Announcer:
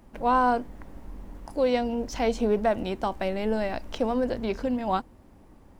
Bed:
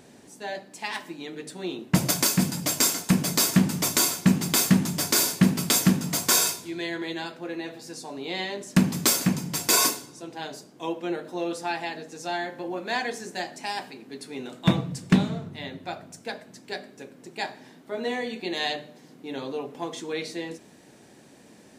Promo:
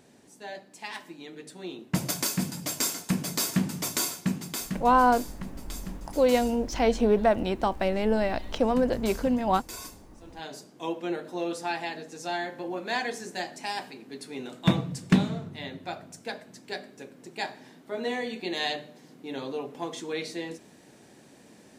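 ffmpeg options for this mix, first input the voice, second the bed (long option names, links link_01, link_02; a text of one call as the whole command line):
ffmpeg -i stem1.wav -i stem2.wav -filter_complex "[0:a]adelay=4600,volume=2dB[link_01];[1:a]volume=13dB,afade=type=out:start_time=3.98:duration=0.99:silence=0.188365,afade=type=in:start_time=10.14:duration=0.44:silence=0.112202[link_02];[link_01][link_02]amix=inputs=2:normalize=0" out.wav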